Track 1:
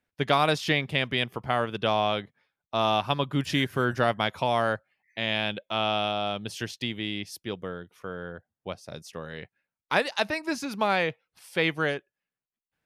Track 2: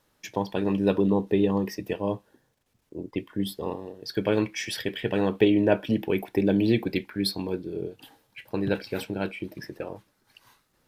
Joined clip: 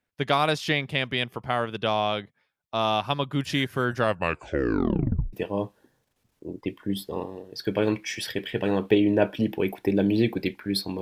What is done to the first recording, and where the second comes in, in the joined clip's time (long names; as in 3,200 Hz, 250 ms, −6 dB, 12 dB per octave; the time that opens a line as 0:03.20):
track 1
0:03.98: tape stop 1.35 s
0:05.33: continue with track 2 from 0:01.83